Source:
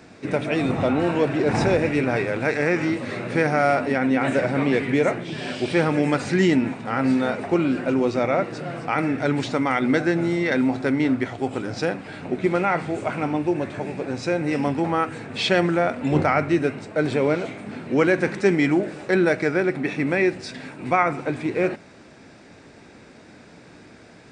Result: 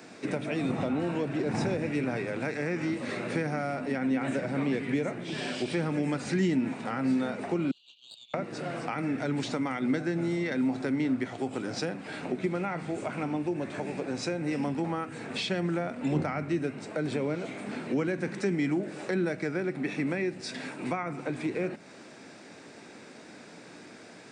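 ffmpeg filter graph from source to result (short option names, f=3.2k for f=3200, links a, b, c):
-filter_complex "[0:a]asettb=1/sr,asplit=3[a][b][c];[a]atrim=end=7.714[d];[b]atrim=start=7.71:end=8.34,asetpts=PTS-STARTPTS,afade=t=in:d=0.004:c=qsin,afade=t=out:st=0.626:d=0.004:c=qsin,asuperpass=centerf=3600:order=12:qfactor=2.2,aeval=exprs='(tanh(56.2*val(0)+0.7)-tanh(0.7))/56.2':c=same[e];[c]atrim=start=8.336[f];[d][e]acrossfade=d=0.004:c1=hsin:c2=qsin[g];[g][f]acrossfade=d=0.004:c1=qsin:c2=hsin,highpass=180,highshelf=f=6k:g=6.5,acrossover=split=230[h][i];[i]acompressor=threshold=-31dB:ratio=5[j];[h][j]amix=inputs=2:normalize=0,volume=-1dB"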